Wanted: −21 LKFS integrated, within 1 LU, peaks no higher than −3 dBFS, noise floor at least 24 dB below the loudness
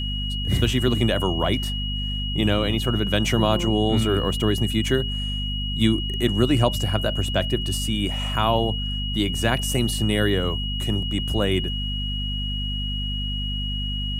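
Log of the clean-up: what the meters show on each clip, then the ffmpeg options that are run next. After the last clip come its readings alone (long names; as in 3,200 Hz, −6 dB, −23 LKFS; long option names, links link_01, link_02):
mains hum 50 Hz; hum harmonics up to 250 Hz; level of the hum −25 dBFS; interfering tone 2,900 Hz; level of the tone −29 dBFS; integrated loudness −23.0 LKFS; sample peak −5.0 dBFS; target loudness −21.0 LKFS
→ -af "bandreject=frequency=50:width_type=h:width=4,bandreject=frequency=100:width_type=h:width=4,bandreject=frequency=150:width_type=h:width=4,bandreject=frequency=200:width_type=h:width=4,bandreject=frequency=250:width_type=h:width=4"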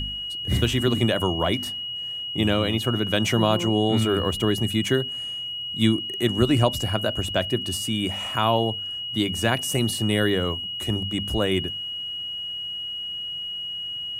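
mains hum none found; interfering tone 2,900 Hz; level of the tone −29 dBFS
→ -af "bandreject=frequency=2900:width=30"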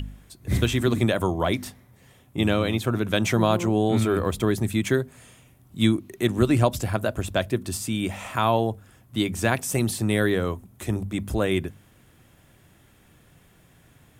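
interfering tone none found; integrated loudness −24.5 LKFS; sample peak −5.5 dBFS; target loudness −21.0 LKFS
→ -af "volume=3.5dB,alimiter=limit=-3dB:level=0:latency=1"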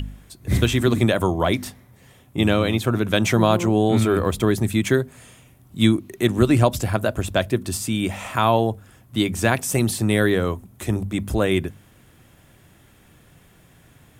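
integrated loudness −21.0 LKFS; sample peak −3.0 dBFS; background noise floor −53 dBFS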